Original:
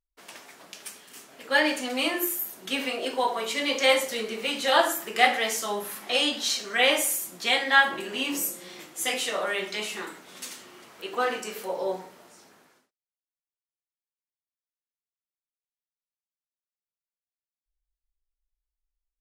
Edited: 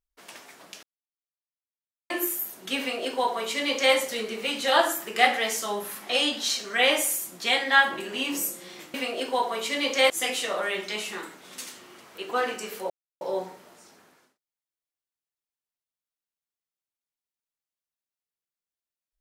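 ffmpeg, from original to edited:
ffmpeg -i in.wav -filter_complex "[0:a]asplit=6[link_01][link_02][link_03][link_04][link_05][link_06];[link_01]atrim=end=0.83,asetpts=PTS-STARTPTS,afade=type=out:start_time=0.826:duration=0.004:curve=hsin[link_07];[link_02]atrim=start=0.83:end=2.1,asetpts=PTS-STARTPTS,volume=0[link_08];[link_03]atrim=start=2.1:end=8.942,asetpts=PTS-STARTPTS,afade=type=in:duration=0.004:curve=hsin[link_09];[link_04]atrim=start=2.788:end=3.952[link_10];[link_05]atrim=start=8.938:end=11.74,asetpts=PTS-STARTPTS,afade=type=out:start_time=2.798:duration=0.004:curve=hsin,apad=pad_dur=0.31[link_11];[link_06]atrim=start=11.74,asetpts=PTS-STARTPTS,afade=type=in:duration=0.004:curve=hsin[link_12];[link_07][link_08][link_09]concat=n=3:v=0:a=1[link_13];[link_13][link_10]acrossfade=duration=0.004:curve1=hsin:curve2=hsin[link_14];[link_11][link_12]concat=n=2:v=0:a=1[link_15];[link_14][link_15]acrossfade=duration=0.004:curve1=hsin:curve2=hsin" out.wav

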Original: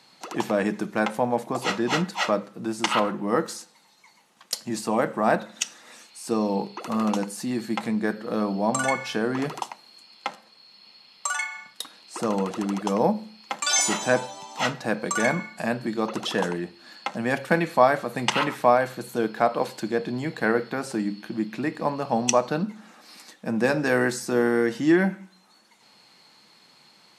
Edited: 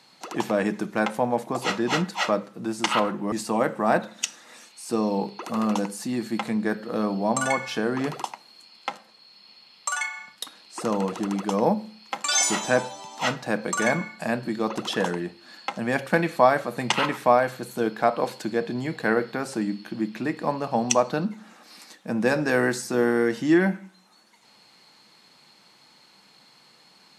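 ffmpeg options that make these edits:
ffmpeg -i in.wav -filter_complex "[0:a]asplit=2[link_01][link_02];[link_01]atrim=end=3.322[link_03];[link_02]atrim=start=4.698[link_04];[link_03][link_04]acrossfade=duration=0.004:curve1=hsin:curve2=hsin" out.wav

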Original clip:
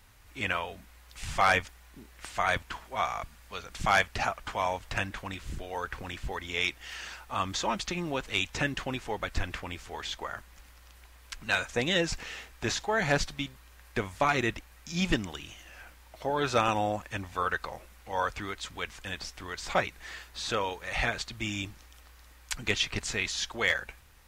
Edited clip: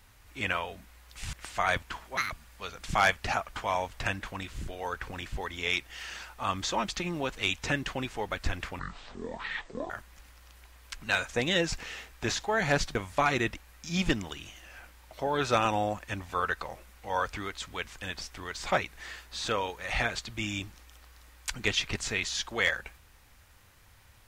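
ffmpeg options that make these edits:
ffmpeg -i in.wav -filter_complex "[0:a]asplit=7[link_01][link_02][link_03][link_04][link_05][link_06][link_07];[link_01]atrim=end=1.332[link_08];[link_02]atrim=start=2.128:end=2.974[link_09];[link_03]atrim=start=2.97:end=3.22,asetpts=PTS-STARTPTS,asetrate=78939,aresample=44100,atrim=end_sample=6159,asetpts=PTS-STARTPTS[link_10];[link_04]atrim=start=3.216:end=9.704[link_11];[link_05]atrim=start=9.7:end=10.3,asetpts=PTS-STARTPTS,asetrate=23814,aresample=44100[link_12];[link_06]atrim=start=10.296:end=13.352[link_13];[link_07]atrim=start=13.978[link_14];[link_08][link_09]acrossfade=duration=0.004:curve1=hsin:curve2=hsin[link_15];[link_15][link_10]acrossfade=duration=0.004:curve1=hsin:curve2=hsin[link_16];[link_16][link_11]acrossfade=duration=0.004:curve1=hsin:curve2=hsin[link_17];[link_17][link_12]acrossfade=duration=0.004:curve1=hsin:curve2=hsin[link_18];[link_18][link_13]acrossfade=duration=0.004:curve1=hsin:curve2=hsin[link_19];[link_19][link_14]acrossfade=duration=0.004:curve1=hsin:curve2=hsin" out.wav

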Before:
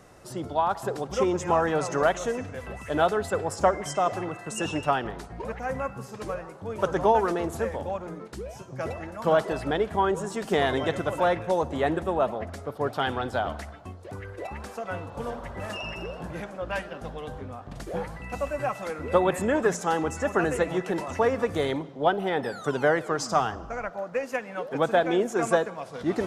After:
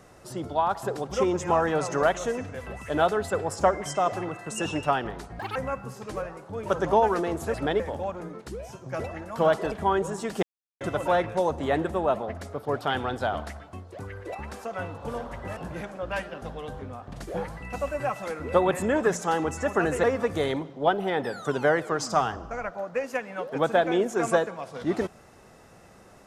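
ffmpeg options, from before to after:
ffmpeg -i in.wav -filter_complex "[0:a]asplit=10[link_01][link_02][link_03][link_04][link_05][link_06][link_07][link_08][link_09][link_10];[link_01]atrim=end=5.394[link_11];[link_02]atrim=start=5.39:end=5.68,asetpts=PTS-STARTPTS,asetrate=76734,aresample=44100[link_12];[link_03]atrim=start=5.676:end=7.662[link_13];[link_04]atrim=start=9.578:end=9.842[link_14];[link_05]atrim=start=7.658:end=9.582[link_15];[link_06]atrim=start=9.838:end=10.55,asetpts=PTS-STARTPTS,afade=type=out:start_time=0.708:duration=0.004:curve=hsin[link_16];[link_07]atrim=start=10.55:end=10.93,asetpts=PTS-STARTPTS,volume=0[link_17];[link_08]atrim=start=10.93:end=15.692,asetpts=PTS-STARTPTS,afade=type=in:duration=0.004:curve=hsin[link_18];[link_09]atrim=start=16.158:end=20.632[link_19];[link_10]atrim=start=21.228[link_20];[link_11][link_12]acrossfade=duration=0.004:curve1=hsin:curve2=hsin[link_21];[link_21][link_13]acrossfade=duration=0.004:curve1=hsin:curve2=hsin[link_22];[link_22][link_14]acrossfade=duration=0.004:curve1=hsin:curve2=hsin[link_23];[link_23][link_15]acrossfade=duration=0.004:curve1=hsin:curve2=hsin[link_24];[link_16][link_17][link_18]concat=n=3:v=0:a=1[link_25];[link_24][link_25]acrossfade=duration=0.004:curve1=hsin:curve2=hsin[link_26];[link_26][link_19]acrossfade=duration=0.004:curve1=hsin:curve2=hsin[link_27];[link_27][link_20]acrossfade=duration=0.004:curve1=hsin:curve2=hsin" out.wav

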